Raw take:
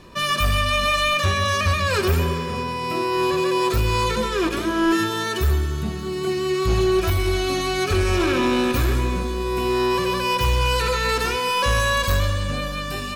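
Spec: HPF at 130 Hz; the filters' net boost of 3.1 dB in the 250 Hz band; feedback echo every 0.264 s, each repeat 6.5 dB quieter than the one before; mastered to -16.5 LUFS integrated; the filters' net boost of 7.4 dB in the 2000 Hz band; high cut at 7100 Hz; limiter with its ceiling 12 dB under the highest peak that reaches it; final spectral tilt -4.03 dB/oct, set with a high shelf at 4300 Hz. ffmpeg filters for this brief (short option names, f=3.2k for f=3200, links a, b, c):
-af "highpass=130,lowpass=7.1k,equalizer=f=250:t=o:g=5,equalizer=f=2k:t=o:g=8.5,highshelf=f=4.3k:g=3.5,alimiter=limit=-17.5dB:level=0:latency=1,aecho=1:1:264|528|792|1056|1320|1584:0.473|0.222|0.105|0.0491|0.0231|0.0109,volume=7dB"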